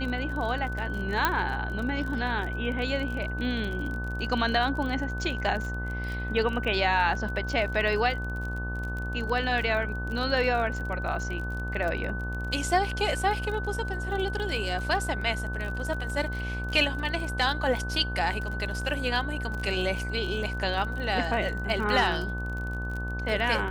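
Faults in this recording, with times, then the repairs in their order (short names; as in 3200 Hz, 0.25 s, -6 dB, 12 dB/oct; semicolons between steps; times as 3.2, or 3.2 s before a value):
buzz 60 Hz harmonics 21 -33 dBFS
crackle 37/s -33 dBFS
tone 1500 Hz -35 dBFS
1.25 pop -8 dBFS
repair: de-click; notch 1500 Hz, Q 30; de-hum 60 Hz, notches 21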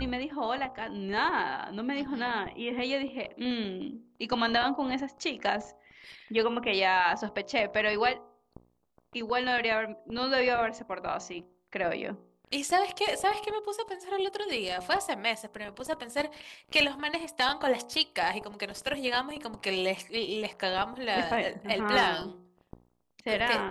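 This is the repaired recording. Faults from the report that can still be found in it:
none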